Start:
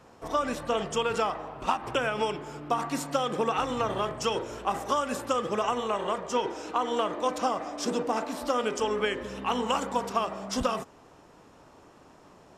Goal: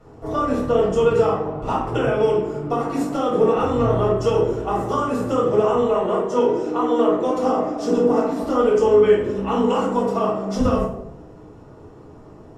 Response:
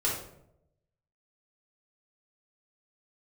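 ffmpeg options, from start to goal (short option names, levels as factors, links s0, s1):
-filter_complex "[0:a]tiltshelf=f=810:g=8,bandreject=f=550:w=12[s0];[1:a]atrim=start_sample=2205[s1];[s0][s1]afir=irnorm=-1:irlink=0,volume=0.794"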